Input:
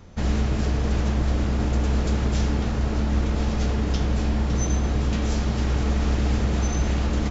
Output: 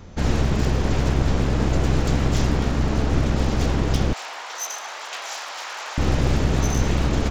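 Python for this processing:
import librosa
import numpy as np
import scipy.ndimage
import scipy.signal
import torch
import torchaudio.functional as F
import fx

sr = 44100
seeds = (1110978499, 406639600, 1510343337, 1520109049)

y = np.minimum(x, 2.0 * 10.0 ** (-25.0 / 20.0) - x)
y = fx.highpass(y, sr, hz=770.0, slope=24, at=(4.13, 5.98))
y = y * librosa.db_to_amplitude(4.5)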